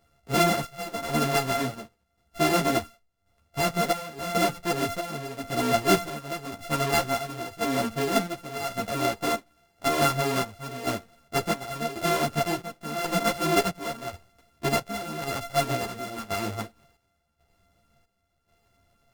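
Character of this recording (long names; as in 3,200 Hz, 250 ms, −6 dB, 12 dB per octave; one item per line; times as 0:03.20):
a buzz of ramps at a fixed pitch in blocks of 64 samples
chopped level 0.92 Hz, depth 65%, duty 60%
a shimmering, thickened sound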